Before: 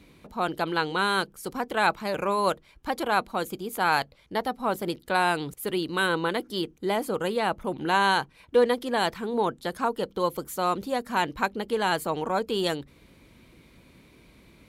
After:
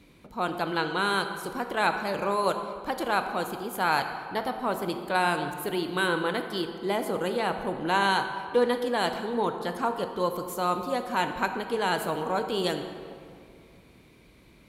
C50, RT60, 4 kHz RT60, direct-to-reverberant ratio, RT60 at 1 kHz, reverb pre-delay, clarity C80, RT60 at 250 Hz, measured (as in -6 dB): 7.5 dB, 2.3 s, 1.4 s, 6.0 dB, 2.3 s, 3 ms, 8.5 dB, 2.5 s